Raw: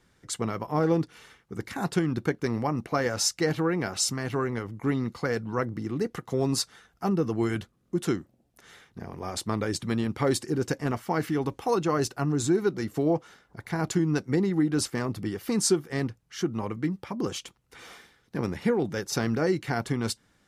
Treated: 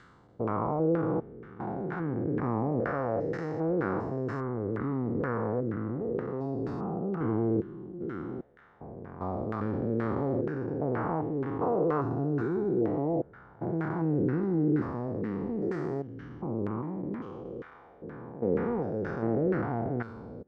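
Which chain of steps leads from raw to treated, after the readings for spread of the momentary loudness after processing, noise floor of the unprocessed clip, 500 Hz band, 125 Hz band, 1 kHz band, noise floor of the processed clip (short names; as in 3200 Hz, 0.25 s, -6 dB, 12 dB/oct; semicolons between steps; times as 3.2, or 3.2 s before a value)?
12 LU, -67 dBFS, -1.5 dB, -2.5 dB, -2.0 dB, -54 dBFS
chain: stepped spectrum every 0.4 s; LFO low-pass saw down 2.1 Hz 440–1600 Hz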